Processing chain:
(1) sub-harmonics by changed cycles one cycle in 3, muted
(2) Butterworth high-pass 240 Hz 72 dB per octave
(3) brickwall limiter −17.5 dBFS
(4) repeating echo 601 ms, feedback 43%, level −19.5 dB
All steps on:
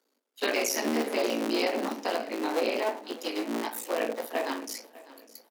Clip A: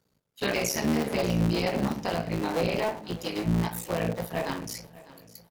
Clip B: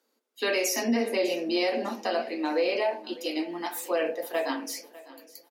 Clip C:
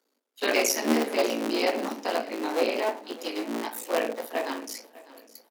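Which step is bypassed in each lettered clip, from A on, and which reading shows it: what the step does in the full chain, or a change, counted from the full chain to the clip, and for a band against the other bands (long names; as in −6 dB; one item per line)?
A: 2, 250 Hz band +4.0 dB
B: 1, change in integrated loudness +1.5 LU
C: 3, change in crest factor +7.5 dB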